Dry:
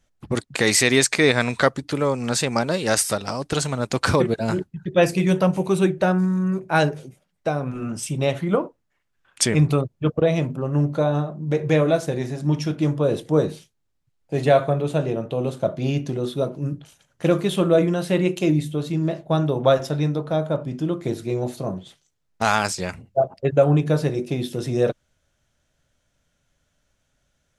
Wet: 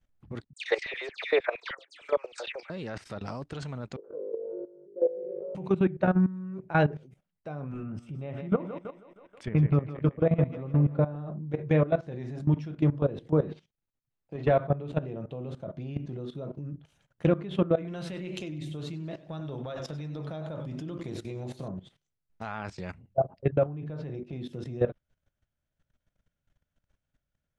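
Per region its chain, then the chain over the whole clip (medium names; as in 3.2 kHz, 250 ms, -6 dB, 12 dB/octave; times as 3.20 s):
0.53–2.70 s: Chebyshev band-pass 320–8900 Hz, order 5 + LFO high-pass square 6.5 Hz 550–3000 Hz + phase dispersion lows, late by 102 ms, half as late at 2.9 kHz
3.96–5.55 s: Butterworth band-pass 450 Hz, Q 3.5 + flutter echo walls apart 3.4 m, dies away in 0.84 s
7.83–11.16 s: tone controls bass +2 dB, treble -13 dB + thinning echo 160 ms, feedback 64%, high-pass 220 Hz, level -8.5 dB
13.41–14.51 s: low-pass 6.6 kHz + bass shelf 94 Hz -11.5 dB + waveshaping leveller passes 1
17.75–21.68 s: treble shelf 2.1 kHz +11 dB + compression 3:1, threshold -22 dBFS + modulated delay 96 ms, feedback 40%, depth 107 cents, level -12 dB
23.66–24.33 s: low-pass 4.4 kHz + compression 4:1, threshold -25 dBFS
whole clip: low-pass that closes with the level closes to 2.8 kHz, closed at -15.5 dBFS; tone controls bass +5 dB, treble -10 dB; level held to a coarse grid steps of 16 dB; trim -4.5 dB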